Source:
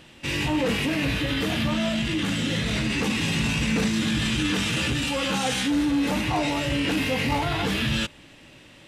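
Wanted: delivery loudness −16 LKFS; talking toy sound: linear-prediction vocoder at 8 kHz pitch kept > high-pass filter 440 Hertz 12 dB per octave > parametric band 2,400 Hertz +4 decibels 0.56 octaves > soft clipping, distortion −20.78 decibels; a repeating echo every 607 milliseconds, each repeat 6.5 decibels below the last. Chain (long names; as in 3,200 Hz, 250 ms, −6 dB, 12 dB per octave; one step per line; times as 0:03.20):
repeating echo 607 ms, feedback 47%, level −6.5 dB
linear-prediction vocoder at 8 kHz pitch kept
high-pass filter 440 Hz 12 dB per octave
parametric band 2,400 Hz +4 dB 0.56 octaves
soft clipping −16.5 dBFS
level +11.5 dB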